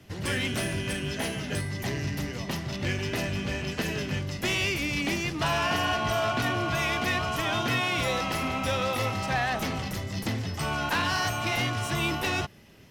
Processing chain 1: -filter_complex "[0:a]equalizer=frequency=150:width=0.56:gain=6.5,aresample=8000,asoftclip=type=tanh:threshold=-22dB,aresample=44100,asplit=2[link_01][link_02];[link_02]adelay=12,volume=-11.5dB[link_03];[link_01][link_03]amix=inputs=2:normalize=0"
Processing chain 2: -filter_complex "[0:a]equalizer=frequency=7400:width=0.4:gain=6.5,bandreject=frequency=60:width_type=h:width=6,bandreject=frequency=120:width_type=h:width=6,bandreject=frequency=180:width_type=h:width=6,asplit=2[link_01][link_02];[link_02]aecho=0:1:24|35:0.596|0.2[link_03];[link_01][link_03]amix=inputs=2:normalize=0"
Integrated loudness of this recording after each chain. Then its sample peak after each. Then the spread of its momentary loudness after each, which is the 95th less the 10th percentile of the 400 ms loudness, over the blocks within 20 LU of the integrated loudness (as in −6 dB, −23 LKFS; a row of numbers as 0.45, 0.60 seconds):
−28.5, −25.0 LKFS; −18.5, −11.5 dBFS; 3, 7 LU